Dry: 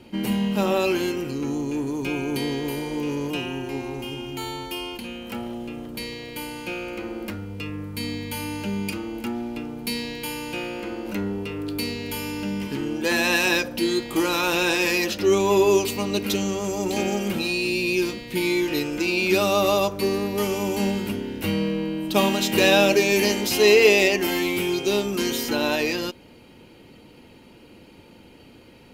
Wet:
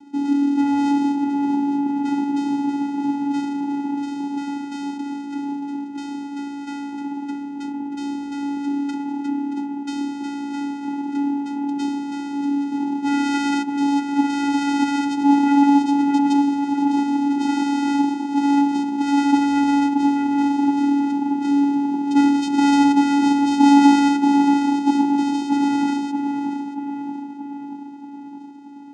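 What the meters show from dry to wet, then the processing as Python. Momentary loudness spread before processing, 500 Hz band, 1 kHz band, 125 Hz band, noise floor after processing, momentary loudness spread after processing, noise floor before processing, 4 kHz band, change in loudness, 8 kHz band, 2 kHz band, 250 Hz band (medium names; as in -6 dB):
14 LU, -17.0 dB, +8.5 dB, under -10 dB, -33 dBFS, 13 LU, -49 dBFS, -8.0 dB, +3.0 dB, -7.0 dB, -7.5 dB, +9.0 dB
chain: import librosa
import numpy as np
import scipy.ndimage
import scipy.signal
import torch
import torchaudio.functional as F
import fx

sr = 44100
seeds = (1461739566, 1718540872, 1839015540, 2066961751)

y = fx.echo_tape(x, sr, ms=629, feedback_pct=68, wet_db=-3.5, lp_hz=1200.0, drive_db=2.0, wow_cents=35)
y = fx.vocoder(y, sr, bands=4, carrier='square', carrier_hz=283.0)
y = F.gain(torch.from_numpy(y), 3.5).numpy()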